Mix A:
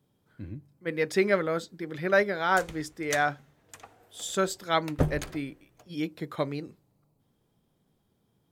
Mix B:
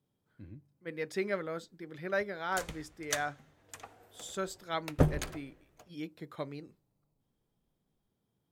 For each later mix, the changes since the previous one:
speech -9.5 dB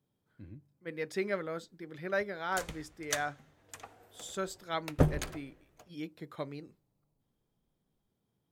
no change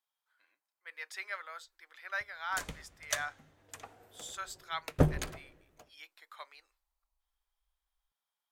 speech: add high-pass 910 Hz 24 dB/octave

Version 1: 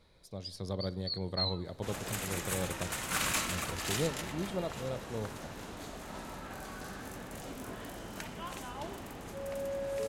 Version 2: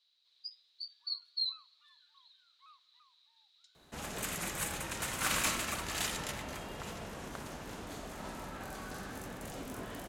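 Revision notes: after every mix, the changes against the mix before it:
speech: muted; second sound: entry +2.10 s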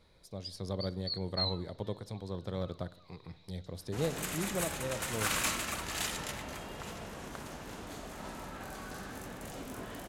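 speech: unmuted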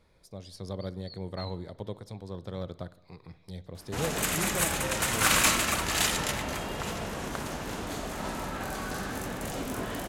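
first sound -11.5 dB; second sound +9.0 dB

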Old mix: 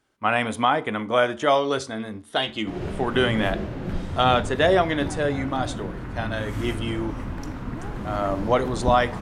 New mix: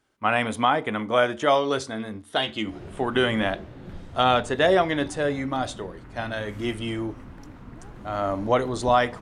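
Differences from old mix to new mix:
background -7.0 dB; reverb: off

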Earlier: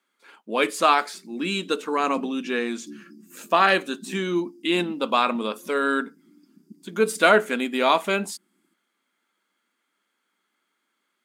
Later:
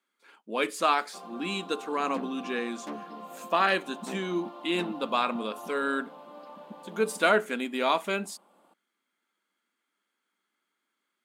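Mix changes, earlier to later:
speech -6.0 dB; background: remove brick-wall FIR band-stop 400–4600 Hz

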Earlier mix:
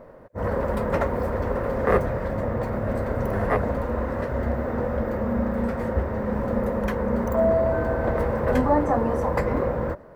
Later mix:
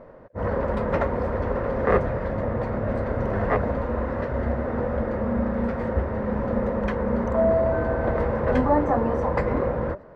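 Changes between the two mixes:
speech +6.5 dB; master: add low-pass 4.3 kHz 12 dB/octave

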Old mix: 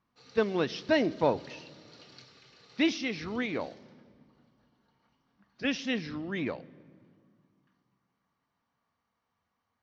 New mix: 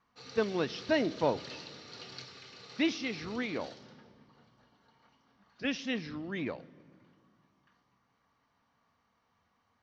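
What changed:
speech -3.0 dB; background +7.0 dB

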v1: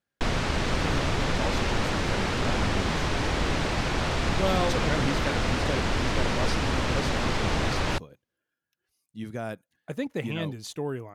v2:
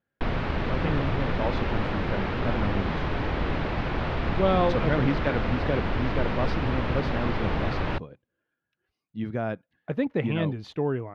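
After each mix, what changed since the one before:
speech +5.5 dB; master: add distance through air 340 m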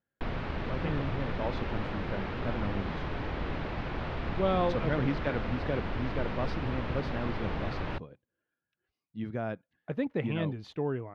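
speech -5.0 dB; background -7.0 dB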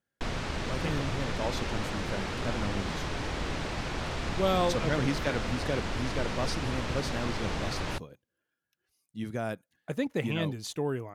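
master: remove distance through air 340 m

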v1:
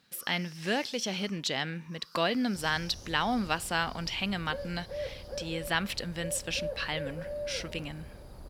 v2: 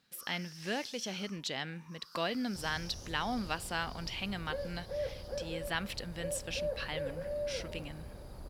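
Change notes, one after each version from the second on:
speech -6.0 dB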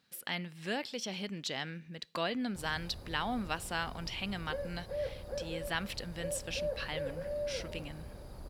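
first sound: muted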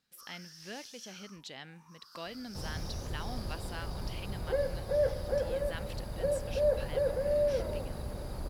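speech -8.5 dB; first sound: unmuted; second sound +8.5 dB

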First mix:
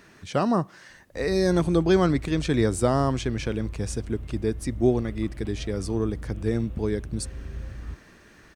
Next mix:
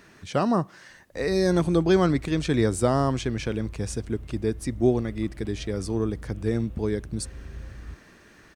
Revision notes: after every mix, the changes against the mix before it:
background -3.5 dB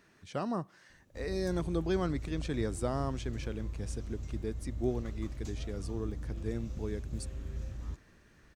speech -11.5 dB; background: remove steep low-pass 3.4 kHz 48 dB/octave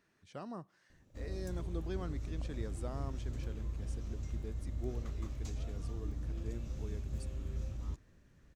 speech -10.5 dB

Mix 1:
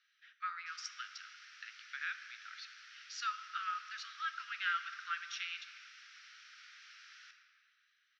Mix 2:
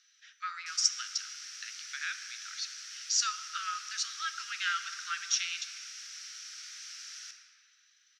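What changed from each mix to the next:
master: remove distance through air 350 m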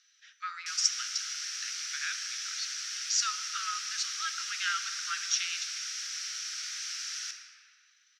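background +8.0 dB

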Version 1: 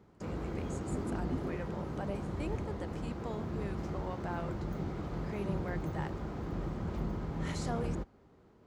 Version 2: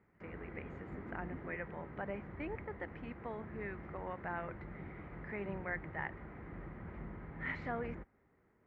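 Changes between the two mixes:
speech +8.5 dB; master: add four-pole ladder low-pass 2.2 kHz, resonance 65%

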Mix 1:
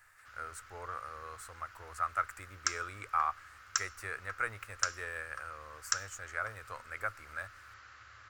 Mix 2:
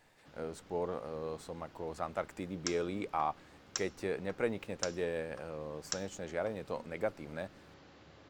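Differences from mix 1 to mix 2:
background: add peaking EQ 3.7 kHz -6 dB 1.9 oct; master: remove FFT filter 110 Hz 0 dB, 160 Hz -25 dB, 890 Hz -7 dB, 1.3 kHz +13 dB, 3.5 kHz -7 dB, 9 kHz +8 dB

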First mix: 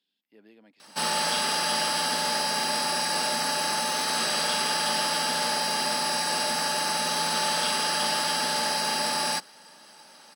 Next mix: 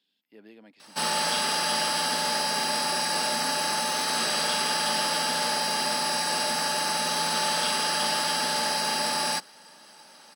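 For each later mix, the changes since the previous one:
speech +4.5 dB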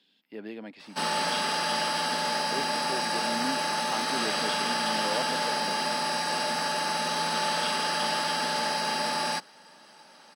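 speech +11.0 dB; master: add treble shelf 6.4 kHz -11 dB

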